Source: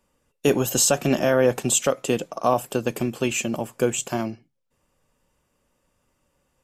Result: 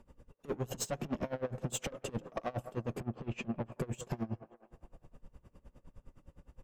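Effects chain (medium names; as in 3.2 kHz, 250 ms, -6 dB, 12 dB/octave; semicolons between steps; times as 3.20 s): tilt EQ -3.5 dB/octave; peak limiter -12.5 dBFS, peak gain reduction 10.5 dB; compression 2:1, threshold -42 dBFS, peak gain reduction 13.5 dB; valve stage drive 37 dB, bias 0.35; 3.00–3.72 s: distance through air 180 m; on a send: feedback echo behind a band-pass 177 ms, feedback 60%, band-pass 810 Hz, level -11 dB; on the sum: logarithmic tremolo 9.7 Hz, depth 23 dB; trim +9 dB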